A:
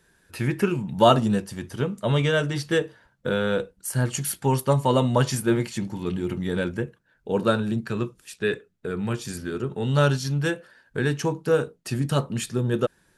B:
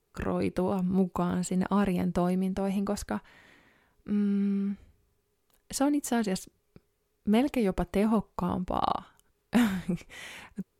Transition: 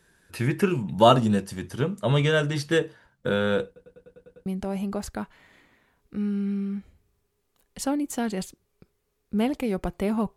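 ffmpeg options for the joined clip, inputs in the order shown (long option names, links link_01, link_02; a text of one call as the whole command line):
ffmpeg -i cue0.wav -i cue1.wav -filter_complex "[0:a]apad=whole_dur=10.36,atrim=end=10.36,asplit=8[link_01][link_02][link_03][link_04][link_05][link_06][link_07][link_08];[link_01]atrim=end=3.762[link_09];[link_02]atrim=start=3.658:end=3.762[link_10];[link_03]atrim=start=3.658:end=3.762[link_11];[link_04]atrim=start=3.658:end=3.762[link_12];[link_05]atrim=start=3.658:end=3.762[link_13];[link_06]atrim=start=3.658:end=3.762[link_14];[link_07]atrim=start=3.658:end=3.762[link_15];[link_08]atrim=start=3.658:end=3.762[link_16];[1:a]atrim=start=2.398:end=8.3[link_17];[link_09][link_10]acrossfade=duration=0.004:curve1=hsin:curve2=hsin[link_18];[link_18][link_11]acrossfade=duration=0.004:curve1=hsin:curve2=hsin[link_19];[link_19][link_12]acrossfade=duration=0.004:curve1=hsin:curve2=hsin[link_20];[link_20][link_13]acrossfade=duration=0.004:curve1=hsin:curve2=hsin[link_21];[link_21][link_14]acrossfade=duration=0.004:curve1=hsin:curve2=hsin[link_22];[link_22][link_15]acrossfade=duration=0.004:curve1=hsin:curve2=hsin[link_23];[link_23][link_16]acrossfade=duration=0.004:curve1=hsin:curve2=hsin[link_24];[link_24][link_17]acrossfade=duration=0.004:curve1=hsin:curve2=hsin" out.wav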